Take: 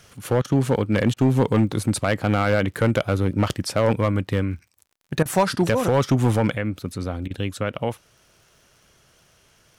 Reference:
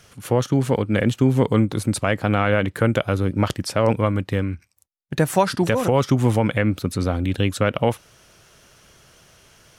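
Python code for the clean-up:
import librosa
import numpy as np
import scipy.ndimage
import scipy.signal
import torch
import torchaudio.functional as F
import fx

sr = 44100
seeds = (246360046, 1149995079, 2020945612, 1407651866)

y = fx.fix_declip(x, sr, threshold_db=-11.0)
y = fx.fix_declick_ar(y, sr, threshold=6.5)
y = fx.fix_interpolate(y, sr, at_s=(0.42, 1.14, 5.23, 7.28), length_ms=24.0)
y = fx.gain(y, sr, db=fx.steps((0.0, 0.0), (6.55, 6.0)))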